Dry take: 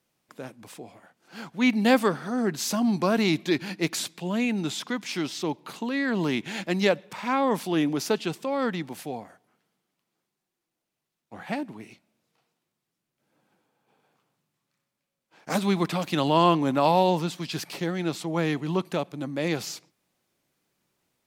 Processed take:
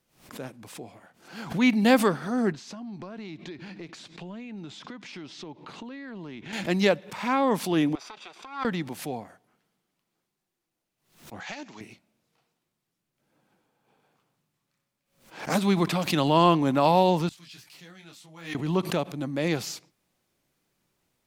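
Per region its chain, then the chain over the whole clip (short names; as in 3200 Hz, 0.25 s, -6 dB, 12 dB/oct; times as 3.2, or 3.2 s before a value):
2.52–6.53 compressor 8:1, threshold -37 dBFS + air absorption 110 m
7.95–8.65 minimum comb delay 0.84 ms + BPF 600–4600 Hz + compressor, threshold -41 dBFS
11.4–11.81 careless resampling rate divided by 3×, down none, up filtered + tilt +4.5 dB/oct + compressor 10:1, threshold -32 dBFS
17.29–18.55 de-esser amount 80% + passive tone stack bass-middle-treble 5-5-5 + detuned doubles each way 24 cents
whole clip: low shelf 65 Hz +11.5 dB; backwards sustainer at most 120 dB/s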